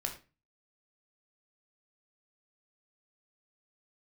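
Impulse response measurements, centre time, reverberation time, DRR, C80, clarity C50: 14 ms, 0.30 s, 3.0 dB, 15.0 dB, 9.5 dB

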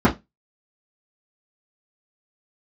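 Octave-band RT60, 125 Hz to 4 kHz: 0.25 s, 0.25 s, 0.20 s, 0.20 s, 0.15 s, 0.20 s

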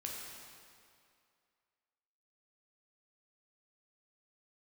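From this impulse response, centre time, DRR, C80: 110 ms, -2.5 dB, 1.5 dB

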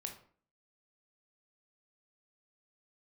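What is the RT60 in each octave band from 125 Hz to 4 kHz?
0.55 s, 0.60 s, 0.50 s, 0.45 s, 0.40 s, 0.35 s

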